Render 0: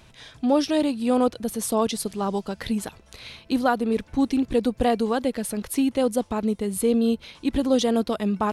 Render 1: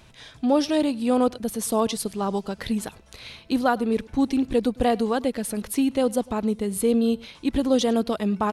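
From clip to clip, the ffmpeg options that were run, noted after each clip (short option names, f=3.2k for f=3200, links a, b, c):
-af "aecho=1:1:103:0.0668"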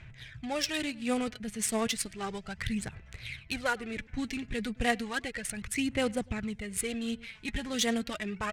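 -af "aphaser=in_gain=1:out_gain=1:delay=4.8:decay=0.54:speed=0.33:type=sinusoidal,adynamicsmooth=sensitivity=5.5:basefreq=2.4k,equalizer=f=125:t=o:w=1:g=7,equalizer=f=250:t=o:w=1:g=-10,equalizer=f=500:t=o:w=1:g=-8,equalizer=f=1k:t=o:w=1:g=-10,equalizer=f=2k:t=o:w=1:g=11,equalizer=f=4k:t=o:w=1:g=-3,equalizer=f=8k:t=o:w=1:g=10,volume=-4dB"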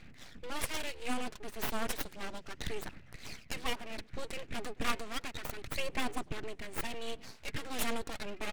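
-af "aeval=exprs='abs(val(0))':c=same,volume=-2dB"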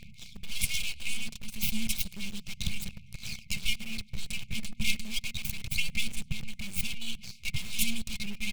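-filter_complex "[0:a]afftfilt=real='re*(1-between(b*sr/4096,230,2100))':imag='im*(1-between(b*sr/4096,230,2100))':win_size=4096:overlap=0.75,asplit=2[a][b];[b]acrusher=bits=6:mix=0:aa=0.000001,volume=-10dB[c];[a][c]amix=inputs=2:normalize=0,volume=5.5dB"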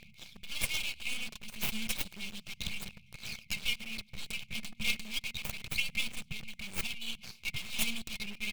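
-filter_complex "[0:a]lowshelf=f=230:g=-12,acrossover=split=4200[a][b];[b]aeval=exprs='max(val(0),0)':c=same[c];[a][c]amix=inputs=2:normalize=0"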